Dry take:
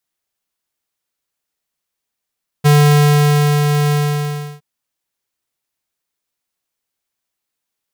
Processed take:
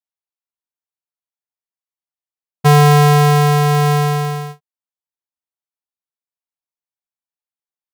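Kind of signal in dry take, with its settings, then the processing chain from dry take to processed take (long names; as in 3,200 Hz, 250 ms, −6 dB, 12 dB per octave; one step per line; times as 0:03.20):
note with an ADSR envelope square 147 Hz, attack 22 ms, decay 966 ms, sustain −5.5 dB, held 1.27 s, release 696 ms −8.5 dBFS
noise gate with hold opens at −24 dBFS
parametric band 870 Hz +7.5 dB 1.2 octaves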